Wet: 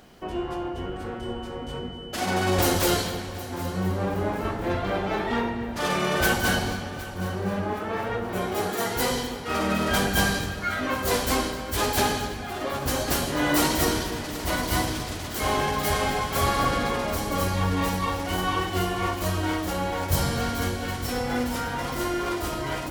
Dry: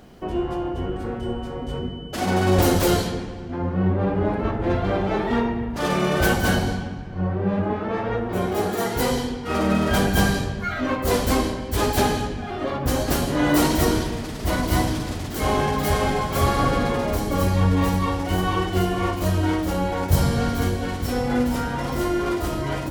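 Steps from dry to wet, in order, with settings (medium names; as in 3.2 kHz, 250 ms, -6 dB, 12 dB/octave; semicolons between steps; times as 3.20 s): tilt shelf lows -4 dB, about 690 Hz; multi-head delay 255 ms, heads first and third, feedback 55%, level -17 dB; trim -3 dB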